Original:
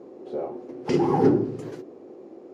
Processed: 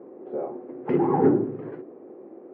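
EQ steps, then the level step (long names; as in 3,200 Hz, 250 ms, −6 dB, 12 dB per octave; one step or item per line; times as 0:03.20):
high-pass filter 130 Hz 12 dB per octave
low-pass filter 2,000 Hz 24 dB per octave
0.0 dB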